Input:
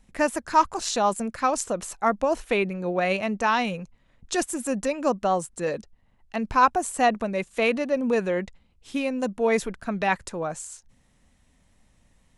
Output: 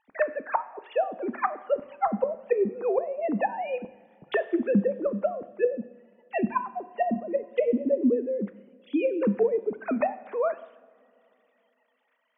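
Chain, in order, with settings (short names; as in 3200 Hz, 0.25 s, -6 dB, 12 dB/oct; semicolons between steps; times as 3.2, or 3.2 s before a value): sine-wave speech; treble ducked by the level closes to 300 Hz, closed at -20.5 dBFS; two-slope reverb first 0.77 s, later 3.5 s, from -19 dB, DRR 12 dB; gain +4 dB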